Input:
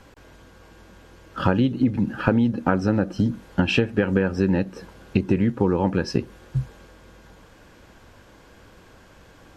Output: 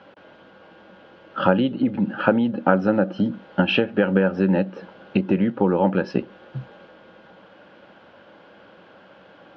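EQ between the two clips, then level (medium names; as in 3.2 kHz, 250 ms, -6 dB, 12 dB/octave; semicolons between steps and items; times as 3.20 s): cabinet simulation 180–4100 Hz, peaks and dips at 190 Hz +7 dB, 320 Hz +3 dB, 570 Hz +10 dB, 810 Hz +6 dB, 1.4 kHz +7 dB, 3 kHz +6 dB; -2.0 dB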